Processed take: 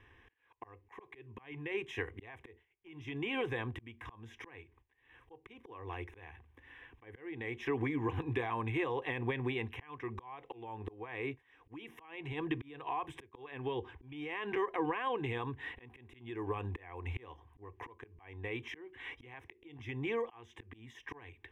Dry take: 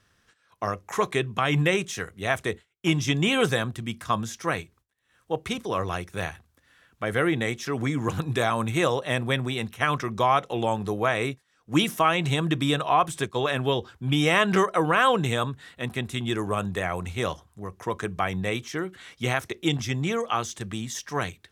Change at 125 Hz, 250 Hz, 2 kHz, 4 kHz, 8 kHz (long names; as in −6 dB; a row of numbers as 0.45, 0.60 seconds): −15.0 dB, −14.0 dB, −14.5 dB, −20.0 dB, below −30 dB